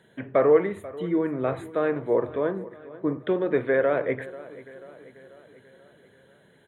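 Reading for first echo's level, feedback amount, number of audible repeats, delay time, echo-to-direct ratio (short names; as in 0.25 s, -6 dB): -18.0 dB, 55%, 4, 0.488 s, -16.5 dB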